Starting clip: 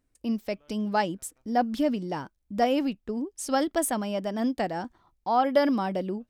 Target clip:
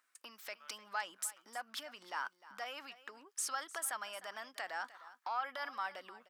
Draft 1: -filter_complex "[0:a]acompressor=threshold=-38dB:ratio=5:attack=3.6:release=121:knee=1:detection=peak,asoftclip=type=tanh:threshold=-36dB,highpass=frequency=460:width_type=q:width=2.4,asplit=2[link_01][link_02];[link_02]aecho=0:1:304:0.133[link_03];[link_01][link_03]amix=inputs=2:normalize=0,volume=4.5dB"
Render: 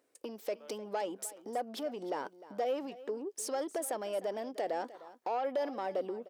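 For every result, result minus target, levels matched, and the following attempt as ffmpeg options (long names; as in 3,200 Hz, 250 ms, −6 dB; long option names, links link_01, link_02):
500 Hz band +12.0 dB; soft clipping: distortion +12 dB
-filter_complex "[0:a]acompressor=threshold=-38dB:ratio=5:attack=3.6:release=121:knee=1:detection=peak,asoftclip=type=tanh:threshold=-36dB,highpass=frequency=1300:width_type=q:width=2.4,asplit=2[link_01][link_02];[link_02]aecho=0:1:304:0.133[link_03];[link_01][link_03]amix=inputs=2:normalize=0,volume=4.5dB"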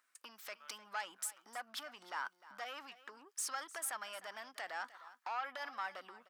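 soft clipping: distortion +12 dB
-filter_complex "[0:a]acompressor=threshold=-38dB:ratio=5:attack=3.6:release=121:knee=1:detection=peak,asoftclip=type=tanh:threshold=-28dB,highpass=frequency=1300:width_type=q:width=2.4,asplit=2[link_01][link_02];[link_02]aecho=0:1:304:0.133[link_03];[link_01][link_03]amix=inputs=2:normalize=0,volume=4.5dB"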